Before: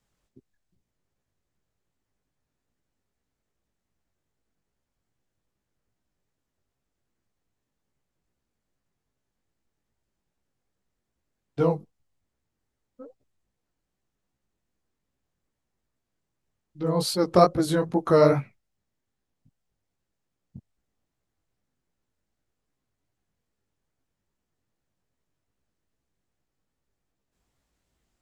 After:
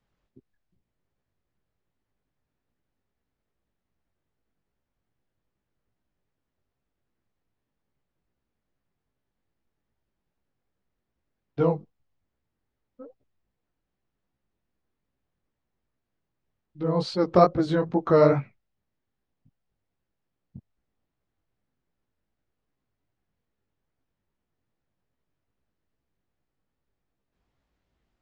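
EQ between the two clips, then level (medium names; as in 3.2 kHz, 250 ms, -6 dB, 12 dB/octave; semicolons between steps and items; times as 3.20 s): Gaussian low-pass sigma 1.8 samples; 0.0 dB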